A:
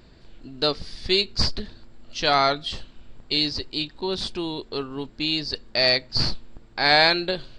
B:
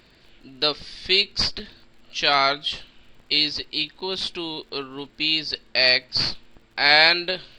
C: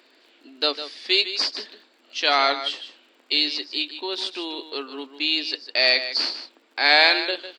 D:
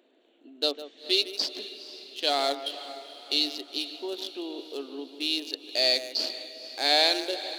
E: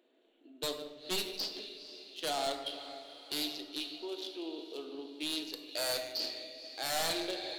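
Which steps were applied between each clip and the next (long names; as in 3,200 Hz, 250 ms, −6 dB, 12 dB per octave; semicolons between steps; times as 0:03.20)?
low-shelf EQ 160 Hz −8 dB; surface crackle 42 per second −48 dBFS; parametric band 2,600 Hz +8 dB 1.5 octaves; level −2 dB
elliptic high-pass filter 270 Hz, stop band 50 dB; single-tap delay 153 ms −11.5 dB
adaptive Wiener filter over 9 samples; flat-topped bell 1,500 Hz −11 dB; feedback delay with all-pass diffusion 475 ms, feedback 52%, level −14 dB; level −2.5 dB
wave folding −20 dBFS; rectangular room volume 410 cubic metres, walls mixed, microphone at 0.65 metres; highs frequency-modulated by the lows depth 0.1 ms; level −7 dB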